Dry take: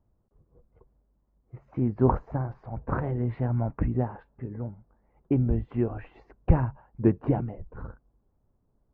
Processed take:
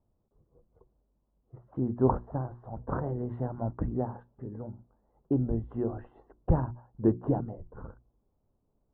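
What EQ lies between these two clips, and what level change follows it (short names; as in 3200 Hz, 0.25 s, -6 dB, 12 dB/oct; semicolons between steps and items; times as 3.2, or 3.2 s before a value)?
running mean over 19 samples; low shelf 180 Hz -5.5 dB; notches 60/120/180/240/300/360 Hz; 0.0 dB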